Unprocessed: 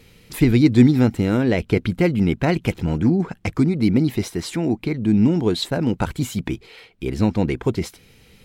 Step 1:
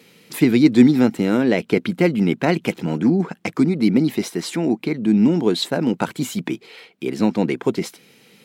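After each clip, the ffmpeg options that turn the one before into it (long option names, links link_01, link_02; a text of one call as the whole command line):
ffmpeg -i in.wav -af "highpass=frequency=170:width=0.5412,highpass=frequency=170:width=1.3066,volume=2dB" out.wav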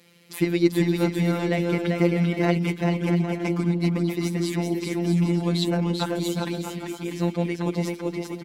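ffmpeg -i in.wav -af "afftfilt=real='hypot(re,im)*cos(PI*b)':imag='0':win_size=1024:overlap=0.75,aecho=1:1:390|643.5|808.3|915.4|985:0.631|0.398|0.251|0.158|0.1,volume=-2.5dB" out.wav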